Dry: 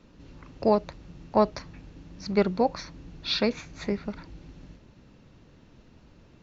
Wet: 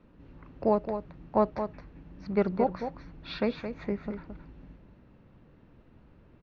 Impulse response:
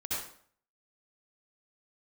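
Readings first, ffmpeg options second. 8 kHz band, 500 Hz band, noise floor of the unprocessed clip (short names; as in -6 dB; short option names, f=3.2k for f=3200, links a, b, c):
n/a, -2.5 dB, -56 dBFS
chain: -af "lowpass=2.1k,aecho=1:1:219:0.376,volume=-3dB"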